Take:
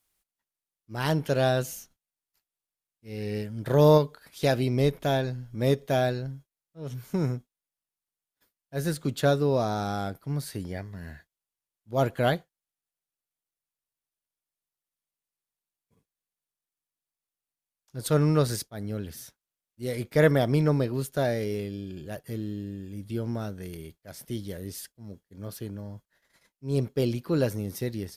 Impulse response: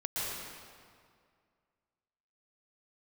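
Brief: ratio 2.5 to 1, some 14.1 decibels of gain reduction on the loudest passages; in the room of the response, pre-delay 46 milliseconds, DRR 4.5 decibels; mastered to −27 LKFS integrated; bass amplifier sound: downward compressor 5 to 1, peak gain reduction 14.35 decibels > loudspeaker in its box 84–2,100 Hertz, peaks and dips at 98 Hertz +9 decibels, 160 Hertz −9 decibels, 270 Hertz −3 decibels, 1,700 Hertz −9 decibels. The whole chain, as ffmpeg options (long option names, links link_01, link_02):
-filter_complex "[0:a]acompressor=threshold=-36dB:ratio=2.5,asplit=2[link_01][link_02];[1:a]atrim=start_sample=2205,adelay=46[link_03];[link_02][link_03]afir=irnorm=-1:irlink=0,volume=-10dB[link_04];[link_01][link_04]amix=inputs=2:normalize=0,acompressor=threshold=-42dB:ratio=5,highpass=frequency=84:width=0.5412,highpass=frequency=84:width=1.3066,equalizer=frequency=98:width_type=q:width=4:gain=9,equalizer=frequency=160:width_type=q:width=4:gain=-9,equalizer=frequency=270:width_type=q:width=4:gain=-3,equalizer=frequency=1700:width_type=q:width=4:gain=-9,lowpass=frequency=2100:width=0.5412,lowpass=frequency=2100:width=1.3066,volume=19dB"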